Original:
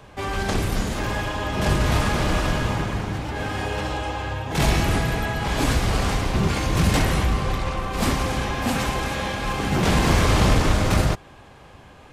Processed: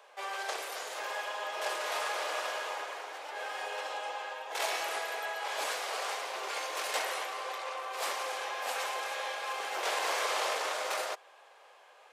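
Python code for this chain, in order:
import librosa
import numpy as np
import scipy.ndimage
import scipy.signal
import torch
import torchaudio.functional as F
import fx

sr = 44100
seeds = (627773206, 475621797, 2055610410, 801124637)

y = scipy.signal.sosfilt(scipy.signal.butter(6, 480.0, 'highpass', fs=sr, output='sos'), x)
y = y * 10.0 ** (-8.0 / 20.0)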